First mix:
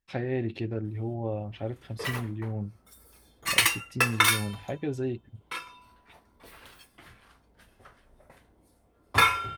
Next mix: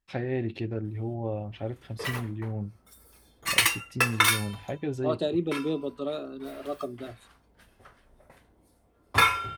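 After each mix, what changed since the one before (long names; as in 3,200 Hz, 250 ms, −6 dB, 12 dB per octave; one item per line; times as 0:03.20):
second voice: unmuted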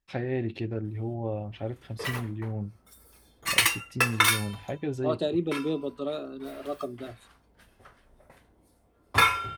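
nothing changed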